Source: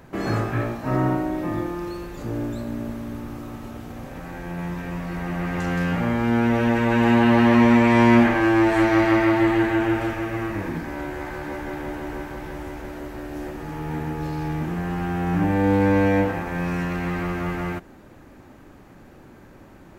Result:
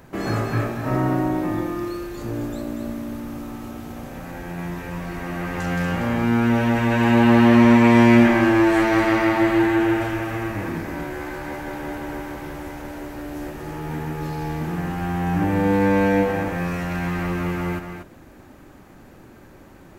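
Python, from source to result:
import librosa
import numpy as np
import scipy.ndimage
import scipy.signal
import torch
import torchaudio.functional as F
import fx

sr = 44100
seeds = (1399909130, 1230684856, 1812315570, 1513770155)

p1 = fx.high_shelf(x, sr, hz=5900.0, db=5.0)
y = p1 + fx.echo_single(p1, sr, ms=238, db=-7.0, dry=0)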